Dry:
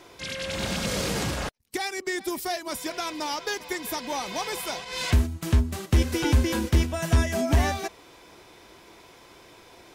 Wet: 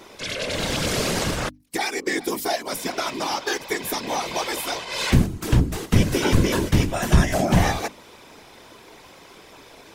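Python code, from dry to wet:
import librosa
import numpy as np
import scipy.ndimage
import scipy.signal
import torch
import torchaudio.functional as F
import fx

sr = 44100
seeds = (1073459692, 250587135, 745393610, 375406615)

y = fx.whisperise(x, sr, seeds[0])
y = fx.hum_notches(y, sr, base_hz=50, count=6)
y = F.gain(torch.from_numpy(y), 4.5).numpy()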